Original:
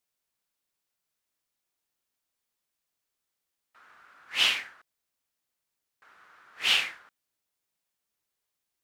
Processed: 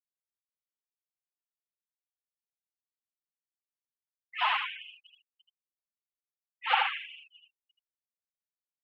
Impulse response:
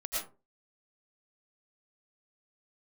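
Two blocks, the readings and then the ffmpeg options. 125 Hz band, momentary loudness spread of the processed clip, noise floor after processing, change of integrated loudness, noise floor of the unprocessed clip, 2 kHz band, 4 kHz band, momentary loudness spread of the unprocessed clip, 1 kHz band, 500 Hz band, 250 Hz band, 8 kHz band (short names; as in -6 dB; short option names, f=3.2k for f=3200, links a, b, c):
n/a, 17 LU, under -85 dBFS, -4.0 dB, -85 dBFS, -2.5 dB, -8.5 dB, 10 LU, +12.0 dB, 0.0 dB, under -20 dB, under -30 dB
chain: -filter_complex "[0:a]asplit=2[a][b];[b]aecho=0:1:90|216|392.4|639.4|985.1:0.631|0.398|0.251|0.158|0.1[c];[a][c]amix=inputs=2:normalize=0,afftfilt=real='re*gte(hypot(re,im),0.0562)':imag='im*gte(hypot(re,im),0.0562)':win_size=1024:overlap=0.75,lowpass=f=920:t=q:w=3.9,aphaser=in_gain=1:out_gain=1:delay=4.5:decay=0.29:speed=0.74:type=sinusoidal,highpass=130,asplit=2[d][e];[e]aecho=0:1:79:0.631[f];[d][f]amix=inputs=2:normalize=0,volume=8dB"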